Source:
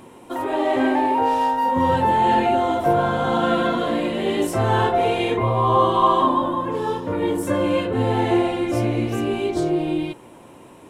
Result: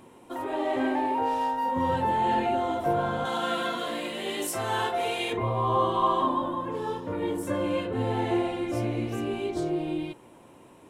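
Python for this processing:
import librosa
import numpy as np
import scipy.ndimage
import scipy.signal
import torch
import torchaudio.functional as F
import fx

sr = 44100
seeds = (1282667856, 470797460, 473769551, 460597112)

y = fx.tilt_eq(x, sr, slope=3.0, at=(3.25, 5.33))
y = y * 10.0 ** (-7.5 / 20.0)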